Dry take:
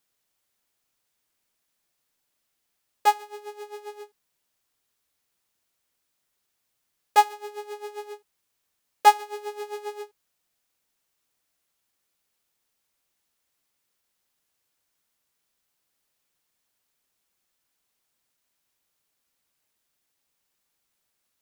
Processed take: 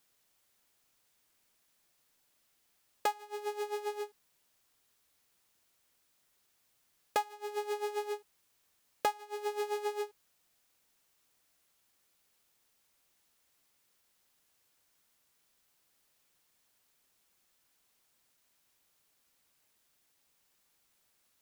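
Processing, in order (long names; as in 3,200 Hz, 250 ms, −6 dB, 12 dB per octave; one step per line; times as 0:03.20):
downward compressor 8 to 1, threshold −34 dBFS, peak gain reduction 23 dB
level +3.5 dB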